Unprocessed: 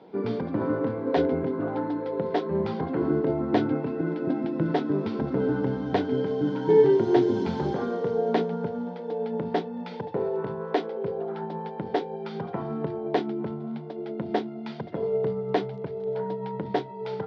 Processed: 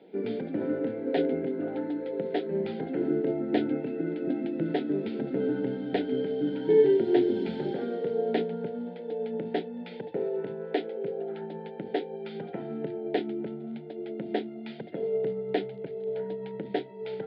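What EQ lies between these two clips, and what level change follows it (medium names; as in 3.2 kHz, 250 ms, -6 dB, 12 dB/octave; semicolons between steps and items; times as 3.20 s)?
high-pass 230 Hz 12 dB/octave; static phaser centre 2.6 kHz, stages 4; 0.0 dB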